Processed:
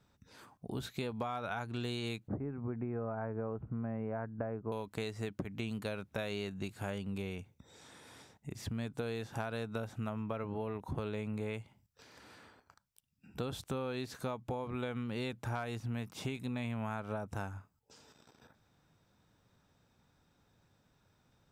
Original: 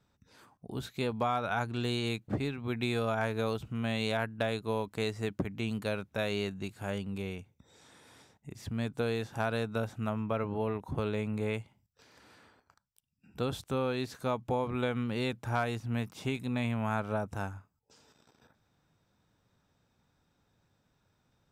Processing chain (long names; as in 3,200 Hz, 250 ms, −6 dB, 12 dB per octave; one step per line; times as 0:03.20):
0:02.28–0:04.72: Bessel low-pass filter 1,000 Hz, order 8
downward compressor, threshold −37 dBFS, peak gain reduction 11 dB
level +2 dB